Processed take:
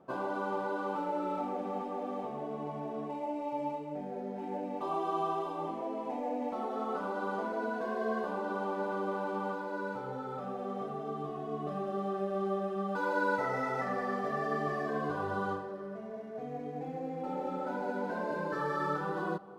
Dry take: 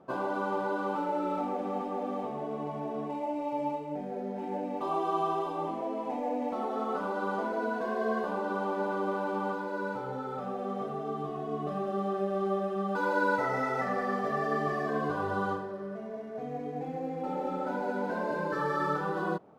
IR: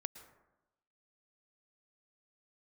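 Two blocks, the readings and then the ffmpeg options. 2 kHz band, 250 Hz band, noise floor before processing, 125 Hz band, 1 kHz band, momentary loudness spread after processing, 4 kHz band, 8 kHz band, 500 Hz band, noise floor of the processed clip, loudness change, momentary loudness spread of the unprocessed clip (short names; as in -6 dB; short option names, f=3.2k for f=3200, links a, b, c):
-3.0 dB, -3.0 dB, -38 dBFS, -3.0 dB, -3.0 dB, 6 LU, -3.0 dB, n/a, -3.0 dB, -41 dBFS, -3.0 dB, 6 LU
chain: -filter_complex "[0:a]asplit=2[a][b];[1:a]atrim=start_sample=2205,asetrate=25578,aresample=44100[c];[b][c]afir=irnorm=-1:irlink=0,volume=-6dB[d];[a][d]amix=inputs=2:normalize=0,volume=-6.5dB"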